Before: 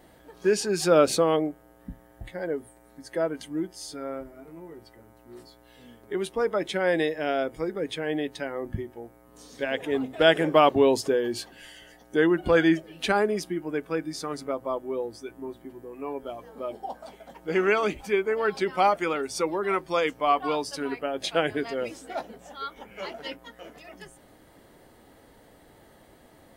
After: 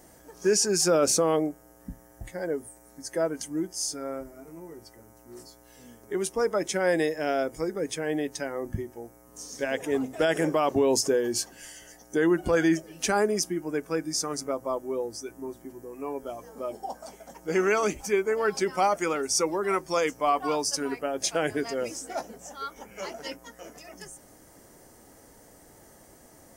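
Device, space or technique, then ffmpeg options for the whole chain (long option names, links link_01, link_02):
over-bright horn tweeter: -af "highshelf=frequency=4700:width_type=q:width=3:gain=7.5,alimiter=limit=-14dB:level=0:latency=1:release=28"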